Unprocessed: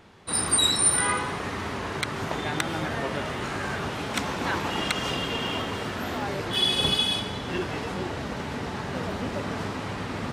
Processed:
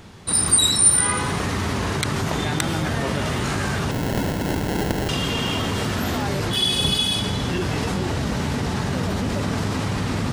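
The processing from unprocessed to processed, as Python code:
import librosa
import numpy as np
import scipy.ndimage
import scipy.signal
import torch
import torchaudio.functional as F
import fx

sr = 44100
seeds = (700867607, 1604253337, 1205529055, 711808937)

p1 = fx.bass_treble(x, sr, bass_db=8, treble_db=8)
p2 = fx.over_compress(p1, sr, threshold_db=-29.0, ratio=-1.0)
p3 = p1 + (p2 * 10.0 ** (-2.0 / 20.0))
p4 = fx.sample_hold(p3, sr, seeds[0], rate_hz=1200.0, jitter_pct=0, at=(3.91, 5.09))
y = p4 * 10.0 ** (-1.5 / 20.0)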